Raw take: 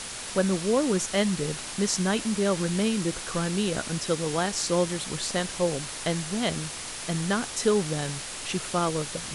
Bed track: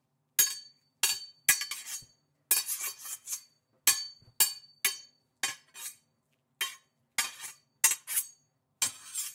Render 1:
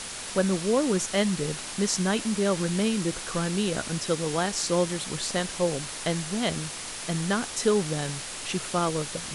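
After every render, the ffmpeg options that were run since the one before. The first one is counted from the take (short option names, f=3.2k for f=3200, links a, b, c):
-af "bandreject=f=60:t=h:w=4,bandreject=f=120:t=h:w=4"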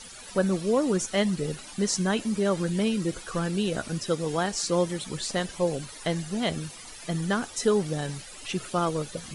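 -af "afftdn=nr=14:nf=-37"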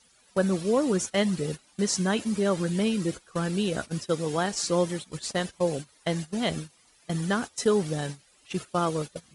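-af "highpass=40,agate=range=-17dB:threshold=-32dB:ratio=16:detection=peak"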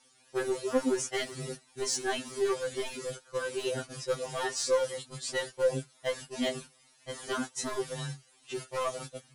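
-af "asoftclip=type=hard:threshold=-21.5dB,afftfilt=real='re*2.45*eq(mod(b,6),0)':imag='im*2.45*eq(mod(b,6),0)':win_size=2048:overlap=0.75"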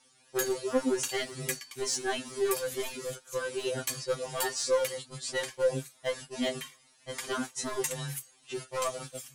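-filter_complex "[1:a]volume=-10dB[a];[0:a][a]amix=inputs=2:normalize=0"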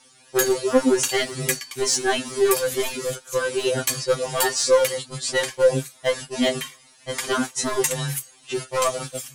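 -af "volume=10dB"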